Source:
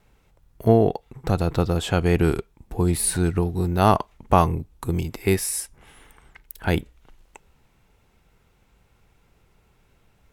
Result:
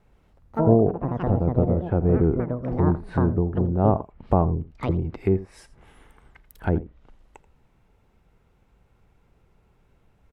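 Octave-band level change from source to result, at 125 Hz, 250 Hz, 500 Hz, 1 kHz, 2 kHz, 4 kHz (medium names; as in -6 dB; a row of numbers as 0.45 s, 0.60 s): +0.5 dB, +1.0 dB, -0.5 dB, -5.0 dB, -9.5 dB, under -15 dB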